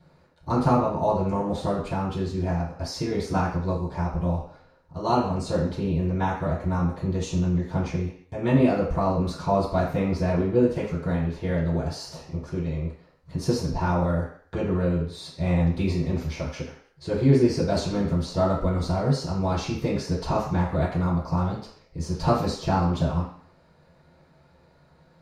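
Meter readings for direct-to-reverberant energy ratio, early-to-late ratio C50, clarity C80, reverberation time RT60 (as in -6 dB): -11.0 dB, 5.5 dB, 8.5 dB, 0.55 s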